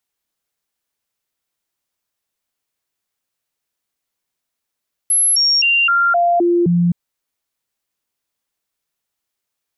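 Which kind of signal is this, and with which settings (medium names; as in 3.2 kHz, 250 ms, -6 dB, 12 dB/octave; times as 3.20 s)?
stepped sine 11.1 kHz down, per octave 1, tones 7, 0.26 s, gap 0.00 s -11 dBFS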